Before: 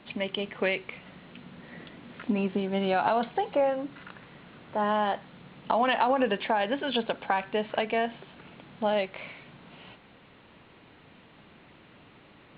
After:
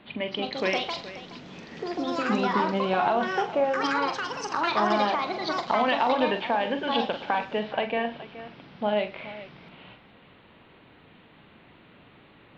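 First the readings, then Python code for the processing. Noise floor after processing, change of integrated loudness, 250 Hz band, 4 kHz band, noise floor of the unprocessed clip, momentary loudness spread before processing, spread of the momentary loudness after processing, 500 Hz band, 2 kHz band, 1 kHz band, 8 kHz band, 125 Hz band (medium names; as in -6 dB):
-55 dBFS, +2.0 dB, +2.0 dB, +4.0 dB, -56 dBFS, 21 LU, 17 LU, +1.5 dB, +3.5 dB, +3.0 dB, no reading, +0.5 dB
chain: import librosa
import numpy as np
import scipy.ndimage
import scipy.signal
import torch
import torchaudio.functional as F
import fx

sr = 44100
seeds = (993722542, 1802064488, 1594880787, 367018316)

y = fx.echo_pitch(x, sr, ms=269, semitones=5, count=2, db_per_echo=-3.0)
y = fx.echo_multitap(y, sr, ms=(43, 110, 422), db=(-9.0, -20.0, -15.0))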